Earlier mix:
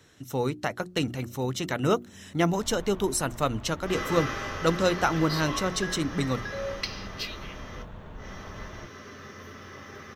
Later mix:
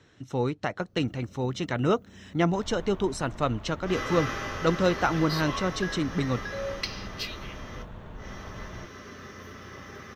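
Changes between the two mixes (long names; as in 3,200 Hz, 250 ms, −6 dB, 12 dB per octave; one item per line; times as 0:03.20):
speech: add high-frequency loss of the air 110 metres
master: remove mains-hum notches 60/120/180/240/300/360 Hz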